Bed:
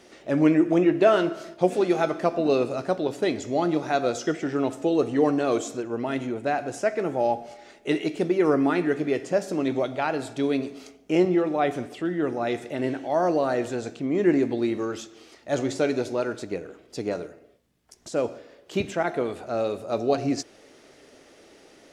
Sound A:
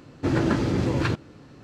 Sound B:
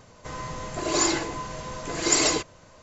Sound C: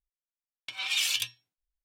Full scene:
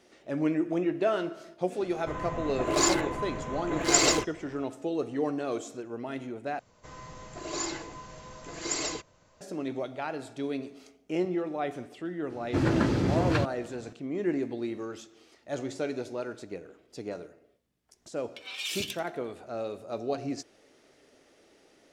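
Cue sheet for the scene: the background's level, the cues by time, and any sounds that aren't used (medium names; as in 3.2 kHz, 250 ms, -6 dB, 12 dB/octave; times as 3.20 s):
bed -8.5 dB
1.82 s: add B -0.5 dB + local Wiener filter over 9 samples
6.59 s: replace with B -10.5 dB
12.30 s: add A -2.5 dB
17.68 s: add C -7 dB + feedback delay 86 ms, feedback 45%, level -16 dB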